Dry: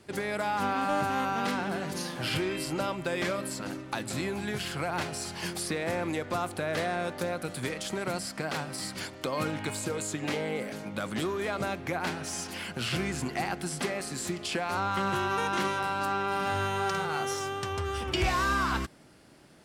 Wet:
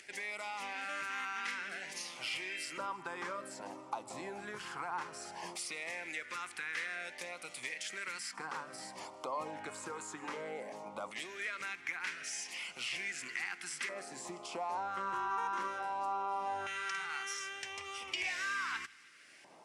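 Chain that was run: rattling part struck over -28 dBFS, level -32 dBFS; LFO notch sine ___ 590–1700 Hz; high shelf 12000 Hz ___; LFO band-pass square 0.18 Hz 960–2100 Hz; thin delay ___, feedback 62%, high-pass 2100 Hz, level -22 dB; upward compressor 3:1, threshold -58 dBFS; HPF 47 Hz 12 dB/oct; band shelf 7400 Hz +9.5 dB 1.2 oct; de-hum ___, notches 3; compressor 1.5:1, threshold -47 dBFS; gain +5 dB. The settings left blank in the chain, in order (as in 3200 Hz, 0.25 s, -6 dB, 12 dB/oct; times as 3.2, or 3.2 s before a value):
0.57 Hz, +8.5 dB, 0.157 s, 72.33 Hz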